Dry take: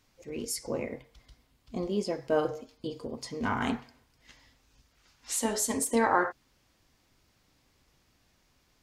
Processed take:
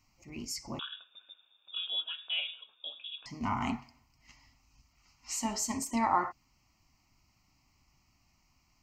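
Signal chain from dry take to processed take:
phaser with its sweep stopped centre 2,400 Hz, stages 8
0:00.79–0:03.26: voice inversion scrambler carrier 3,600 Hz

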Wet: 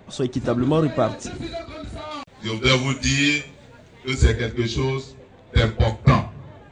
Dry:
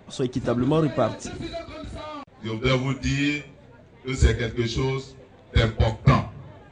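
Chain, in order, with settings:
0:02.11–0:04.14: high-shelf EQ 2,500 Hz +11.5 dB
level +2 dB

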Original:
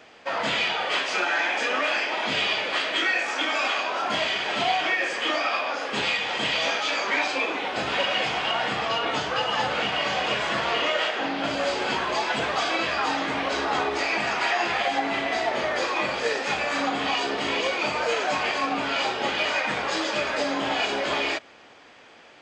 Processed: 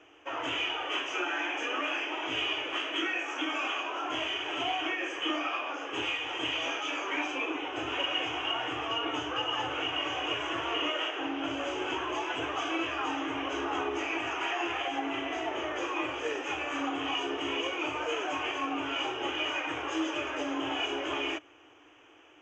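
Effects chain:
drawn EQ curve 120 Hz 0 dB, 200 Hz −28 dB, 300 Hz +8 dB, 540 Hz −6 dB, 1,200 Hz −1 dB, 2,000 Hz −7 dB, 3,000 Hz +3 dB, 4,300 Hz −28 dB, 6,200 Hz −1 dB, 9,700 Hz −20 dB
level −5 dB

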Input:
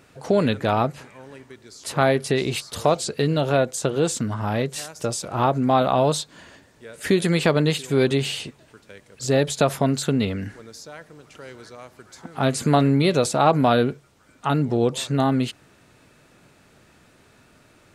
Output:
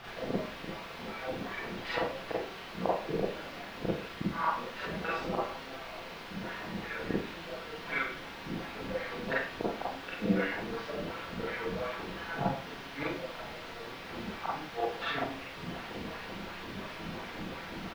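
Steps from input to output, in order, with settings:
high-pass filter 150 Hz 12 dB per octave
low-shelf EQ 330 Hz −11.5 dB
comb filter 6.1 ms, depth 99%
flanger 0.26 Hz, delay 6.5 ms, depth 1.7 ms, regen −26%
background noise brown −40 dBFS
LFO wah 2.8 Hz 200–2,400 Hz, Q 2.5
gate with flip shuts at −31 dBFS, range −33 dB
transient designer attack +5 dB, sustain +9 dB
bit-depth reduction 8 bits, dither triangular
high-frequency loss of the air 340 metres
four-comb reverb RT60 0.45 s, combs from 33 ms, DRR −7 dB
level +6 dB

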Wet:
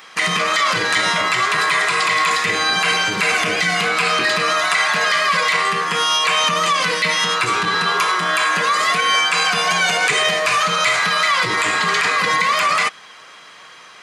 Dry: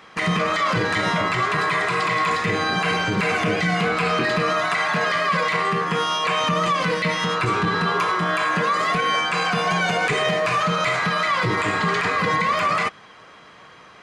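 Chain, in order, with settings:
spectral tilt +3.5 dB per octave
level +2.5 dB

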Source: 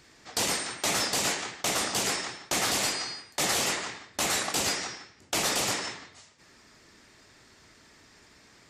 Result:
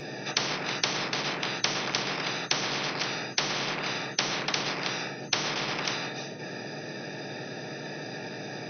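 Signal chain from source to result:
adaptive Wiener filter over 41 samples
bass and treble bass +3 dB, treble +14 dB
treble cut that deepens with the level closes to 530 Hz, closed at −19.5 dBFS
low-shelf EQ 410 Hz +9.5 dB
brick-wall band-pass 110–6,200 Hz
convolution reverb RT60 0.25 s, pre-delay 3 ms, DRR 3.5 dB
every bin compressed towards the loudest bin 10 to 1

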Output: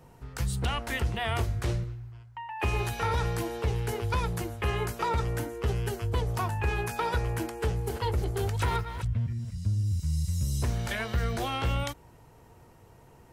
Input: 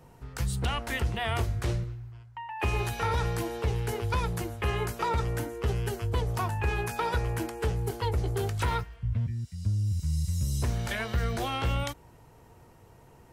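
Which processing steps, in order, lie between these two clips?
0:07.55–0:09.96: delay that plays each chunk backwards 254 ms, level −10 dB

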